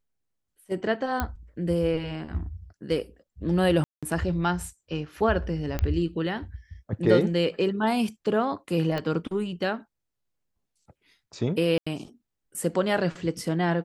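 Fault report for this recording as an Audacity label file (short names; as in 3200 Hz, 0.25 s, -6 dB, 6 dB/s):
1.200000	1.200000	pop -12 dBFS
3.840000	4.030000	gap 0.186 s
5.790000	5.790000	pop -14 dBFS
8.980000	8.980000	pop -17 dBFS
11.780000	11.870000	gap 85 ms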